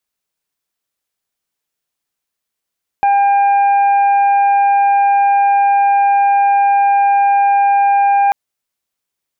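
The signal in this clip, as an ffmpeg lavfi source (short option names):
-f lavfi -i "aevalsrc='0.376*sin(2*PI*801*t)+0.0473*sin(2*PI*1602*t)+0.0422*sin(2*PI*2403*t)':d=5.29:s=44100"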